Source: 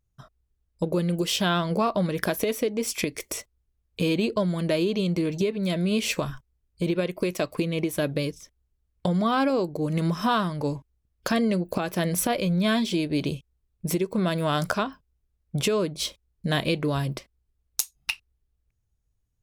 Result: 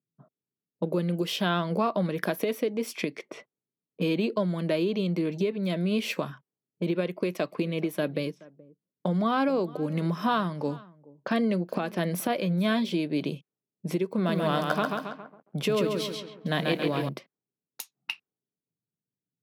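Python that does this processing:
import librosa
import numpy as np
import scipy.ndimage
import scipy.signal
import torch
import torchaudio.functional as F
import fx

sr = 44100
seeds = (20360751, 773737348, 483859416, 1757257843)

y = fx.echo_single(x, sr, ms=425, db=-22.0, at=(7.51, 12.94), fade=0.02)
y = fx.echo_crushed(y, sr, ms=137, feedback_pct=55, bits=8, wet_db=-3.5, at=(14.11, 17.09))
y = fx.env_lowpass(y, sr, base_hz=380.0, full_db=-24.5)
y = scipy.signal.sosfilt(scipy.signal.butter(6, 150.0, 'highpass', fs=sr, output='sos'), y)
y = fx.peak_eq(y, sr, hz=7700.0, db=-11.0, octaves=1.2)
y = y * 10.0 ** (-2.0 / 20.0)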